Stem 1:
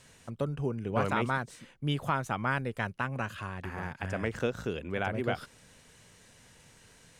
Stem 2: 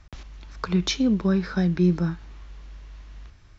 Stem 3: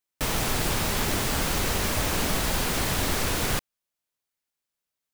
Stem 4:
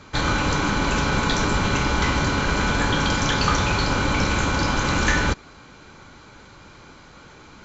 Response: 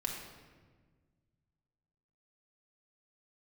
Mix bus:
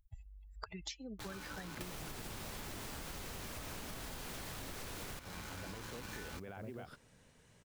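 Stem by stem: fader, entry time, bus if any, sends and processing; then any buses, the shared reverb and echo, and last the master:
−8.5 dB, 1.50 s, bus A, no send, tilt shelving filter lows +3.5 dB, about 1,300 Hz; brickwall limiter −25 dBFS, peak gain reduction 10.5 dB
−7.0 dB, 0.00 s, no bus, no send, spectral dynamics exaggerated over time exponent 3; high-shelf EQ 2,400 Hz +6 dB; every bin compressed towards the loudest bin 2 to 1
−3.0 dB, 1.60 s, bus A, no send, no processing
−19.5 dB, 1.05 s, bus A, no send, chorus effect 0.31 Hz, delay 16.5 ms, depth 2.6 ms; bit reduction 4 bits
bus A: 0.0 dB, noise that follows the level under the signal 26 dB; downward compressor, threshold −30 dBFS, peak gain reduction 6.5 dB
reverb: not used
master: downward compressor 12 to 1, threshold −42 dBFS, peak gain reduction 15.5 dB

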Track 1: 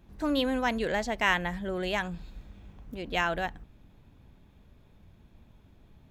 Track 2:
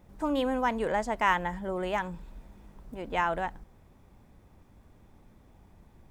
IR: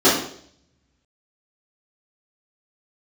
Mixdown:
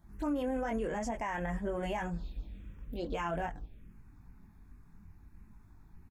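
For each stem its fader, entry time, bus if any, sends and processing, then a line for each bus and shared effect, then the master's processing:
+2.5 dB, 0.00 s, no send, brickwall limiter −21 dBFS, peak gain reduction 10.5 dB; multi-voice chorus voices 6, 0.47 Hz, delay 21 ms, depth 3.4 ms
−6.5 dB, 0.6 ms, no send, frequency shifter mixed with the dry sound −1.3 Hz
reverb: not used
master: phaser swept by the level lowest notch 440 Hz, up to 4,000 Hz, full sweep at −30 dBFS; brickwall limiter −26.5 dBFS, peak gain reduction 10 dB

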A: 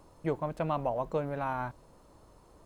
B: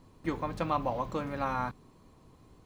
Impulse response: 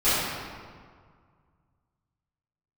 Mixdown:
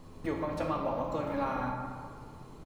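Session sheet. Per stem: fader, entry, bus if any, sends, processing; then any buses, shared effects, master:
−6.0 dB, 0.00 s, send −19 dB, no processing
+3.0 dB, 0.3 ms, send −15.5 dB, downward compressor, threshold −40 dBFS, peak gain reduction 15.5 dB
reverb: on, RT60 1.9 s, pre-delay 5 ms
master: no processing

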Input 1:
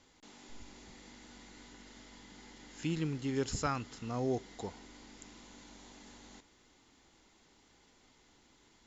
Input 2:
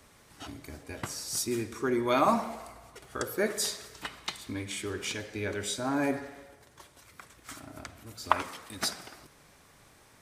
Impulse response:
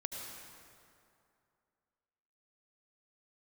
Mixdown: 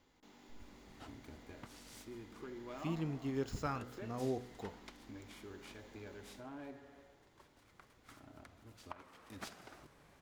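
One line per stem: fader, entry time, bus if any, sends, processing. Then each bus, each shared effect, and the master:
−3.5 dB, 0.00 s, no send, running median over 5 samples; high-shelf EQ 5,700 Hz +5.5 dB; hum removal 61.75 Hz, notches 33
−4.0 dB, 0.60 s, no send, downward compressor 2.5 to 1, threshold −40 dBFS, peak gain reduction 15.5 dB; short delay modulated by noise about 1,400 Hz, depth 0.036 ms; automatic ducking −6 dB, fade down 1.75 s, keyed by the first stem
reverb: not used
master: high-shelf EQ 2,700 Hz −8.5 dB

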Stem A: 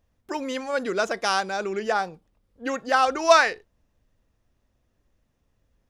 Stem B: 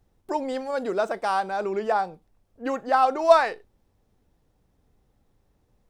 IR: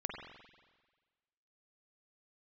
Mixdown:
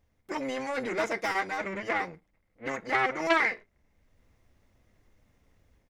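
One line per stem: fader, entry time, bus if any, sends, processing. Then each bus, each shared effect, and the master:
+2.5 dB, 0.00 s, no send, downward compressor, threshold −22 dBFS, peak gain reduction 11.5 dB; flanger 0.4 Hz, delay 9.4 ms, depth 4.3 ms, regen −46%; soft clipping −28.5 dBFS, distortion −11 dB; automatic ducking −10 dB, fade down 1.70 s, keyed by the second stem
0.0 dB, 6.3 ms, no send, sub-harmonics by changed cycles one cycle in 2, muted; transistor ladder low-pass 2,200 Hz, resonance 85%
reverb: not used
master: automatic gain control gain up to 6 dB; saturating transformer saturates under 1,600 Hz

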